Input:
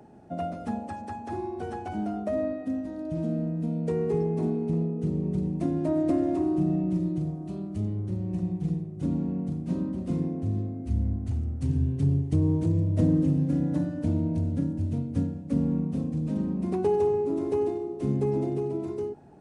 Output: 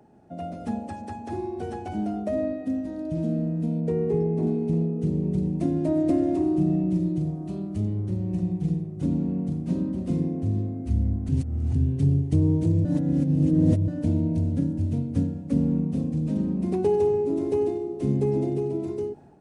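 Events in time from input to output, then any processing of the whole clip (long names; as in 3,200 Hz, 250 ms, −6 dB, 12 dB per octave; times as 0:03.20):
0:03.80–0:04.47: high-shelf EQ 2,800 Hz −9.5 dB
0:11.29–0:11.75: reverse
0:12.85–0:13.88: reverse
whole clip: dynamic equaliser 1,200 Hz, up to −7 dB, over −48 dBFS, Q 1.2; automatic gain control gain up to 7.5 dB; level −4.5 dB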